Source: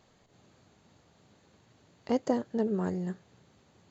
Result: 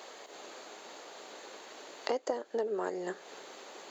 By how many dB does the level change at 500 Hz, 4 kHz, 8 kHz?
−0.5 dB, +8.0 dB, can't be measured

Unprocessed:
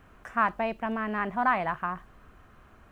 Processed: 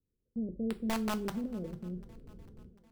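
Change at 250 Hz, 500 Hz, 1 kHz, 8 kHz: +0.5 dB, −7.0 dB, −17.5 dB, can't be measured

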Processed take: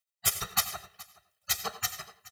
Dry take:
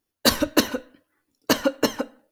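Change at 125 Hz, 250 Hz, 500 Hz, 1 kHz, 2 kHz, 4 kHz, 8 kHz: −8.0, −29.5, −22.0, −7.5, −9.5, −8.0, −0.5 decibels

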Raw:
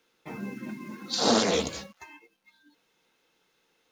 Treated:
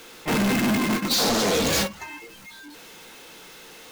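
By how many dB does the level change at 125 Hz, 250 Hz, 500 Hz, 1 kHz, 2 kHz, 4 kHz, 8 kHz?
+11.0, +8.0, +3.5, +5.0, +10.5, +5.5, +7.5 decibels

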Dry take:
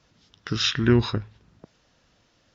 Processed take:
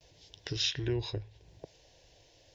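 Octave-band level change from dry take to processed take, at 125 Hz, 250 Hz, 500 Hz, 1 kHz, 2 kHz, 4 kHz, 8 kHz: −11.0 dB, −16.0 dB, −11.0 dB, −16.5 dB, −12.5 dB, −7.0 dB, can't be measured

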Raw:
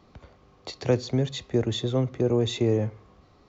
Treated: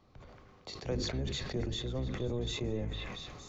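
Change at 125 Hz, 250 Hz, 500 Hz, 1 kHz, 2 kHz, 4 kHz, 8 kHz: −10.0 dB, −11.5 dB, −12.5 dB, −8.5 dB, −3.5 dB, −4.5 dB, can't be measured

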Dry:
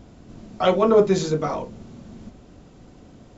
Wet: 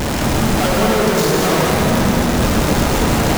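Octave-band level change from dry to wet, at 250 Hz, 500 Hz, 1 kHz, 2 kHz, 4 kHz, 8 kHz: +11.5 dB, +4.0 dB, +10.0 dB, +18.5 dB, +15.5 dB, can't be measured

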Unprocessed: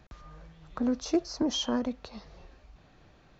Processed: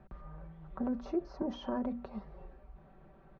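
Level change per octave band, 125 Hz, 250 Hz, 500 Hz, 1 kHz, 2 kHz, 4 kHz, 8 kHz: −1.0 dB, −6.0 dB, −5.5 dB, −3.5 dB, −9.0 dB, −19.5 dB, can't be measured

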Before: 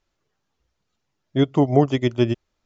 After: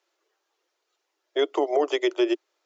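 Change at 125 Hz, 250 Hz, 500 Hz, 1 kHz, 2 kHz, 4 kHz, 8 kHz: below −40 dB, −8.5 dB, −1.5 dB, −3.0 dB, +1.0 dB, +1.0 dB, can't be measured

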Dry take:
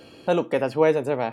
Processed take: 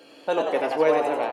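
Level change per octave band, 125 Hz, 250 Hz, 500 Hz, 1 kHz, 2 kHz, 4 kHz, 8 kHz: −14.5 dB, −4.0 dB, −1.0 dB, +3.5 dB, +0.5 dB, +1.0 dB, can't be measured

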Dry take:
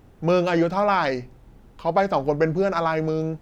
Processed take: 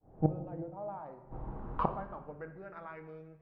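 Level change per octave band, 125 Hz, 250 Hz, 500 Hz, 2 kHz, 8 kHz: −10.0 dB, −15.0 dB, −20.0 dB, −23.5 dB, can't be measured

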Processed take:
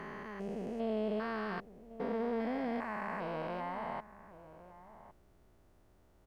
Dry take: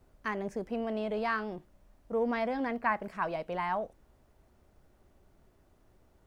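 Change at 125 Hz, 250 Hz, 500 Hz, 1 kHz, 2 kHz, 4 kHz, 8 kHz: −0.5 dB, −1.5 dB, −3.5 dB, −6.0 dB, −7.0 dB, −4.5 dB, can't be measured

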